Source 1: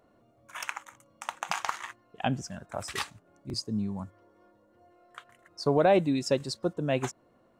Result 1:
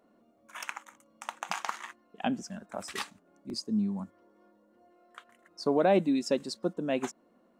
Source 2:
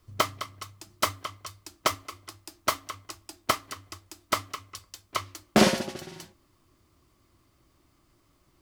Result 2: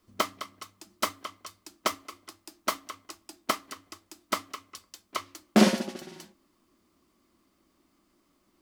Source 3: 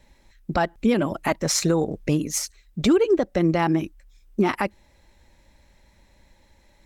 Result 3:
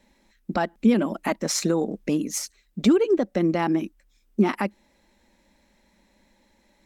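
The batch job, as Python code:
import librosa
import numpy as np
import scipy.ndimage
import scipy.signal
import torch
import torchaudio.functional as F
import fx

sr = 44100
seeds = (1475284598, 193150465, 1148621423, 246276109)

y = fx.low_shelf_res(x, sr, hz=160.0, db=-8.0, q=3.0)
y = F.gain(torch.from_numpy(y), -3.0).numpy()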